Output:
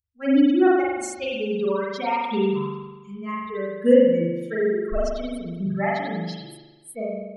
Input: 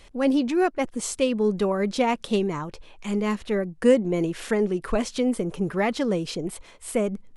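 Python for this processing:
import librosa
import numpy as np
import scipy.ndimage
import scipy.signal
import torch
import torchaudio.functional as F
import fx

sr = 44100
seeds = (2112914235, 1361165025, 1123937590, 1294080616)

y = fx.bin_expand(x, sr, power=3.0)
y = fx.rev_spring(y, sr, rt60_s=1.2, pass_ms=(41,), chirp_ms=60, drr_db=-6.5)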